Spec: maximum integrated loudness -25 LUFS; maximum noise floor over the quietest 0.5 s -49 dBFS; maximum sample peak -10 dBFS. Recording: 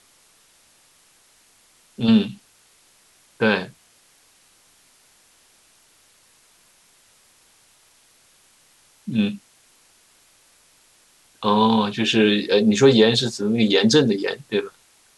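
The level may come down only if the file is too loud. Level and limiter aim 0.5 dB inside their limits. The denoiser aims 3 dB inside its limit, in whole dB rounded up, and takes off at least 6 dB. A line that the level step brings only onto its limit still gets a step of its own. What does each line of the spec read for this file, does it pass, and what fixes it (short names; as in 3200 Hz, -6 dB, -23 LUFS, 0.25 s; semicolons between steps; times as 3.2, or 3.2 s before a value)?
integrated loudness -19.0 LUFS: fail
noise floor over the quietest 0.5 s -57 dBFS: OK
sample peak -4.0 dBFS: fail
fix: gain -6.5 dB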